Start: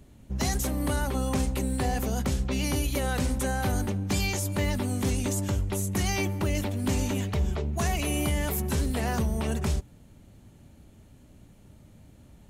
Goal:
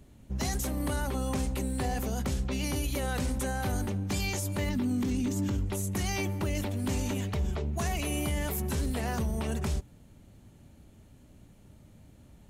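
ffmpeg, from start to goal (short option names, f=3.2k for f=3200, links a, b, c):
-filter_complex "[0:a]asettb=1/sr,asplit=3[a][b][c];[a]atrim=end=4.694[d];[b]atrim=start=4.69:end=5.66,asetpts=PTS-STARTPTS,afade=t=in:d=0.004:c=qsin,afade=t=out:st=0.966:d=0.004:c=qsin,equalizer=f=250:t=o:w=0.67:g=11,equalizer=f=630:t=o:w=0.67:g=-5,equalizer=f=10k:t=o:w=0.67:g=-9[e];[c]atrim=start=5.656[f];[d][e]acrossfade=d=0.004:c1=hsin:c2=qsin[g];[g][f]acrossfade=d=0.004:c1=qsin:c2=hsin,alimiter=limit=-21dB:level=0:latency=1:release=22,volume=-2dB"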